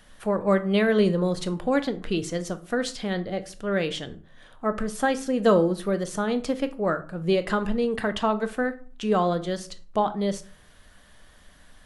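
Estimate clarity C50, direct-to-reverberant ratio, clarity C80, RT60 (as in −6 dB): 16.0 dB, 10.0 dB, 21.0 dB, 0.45 s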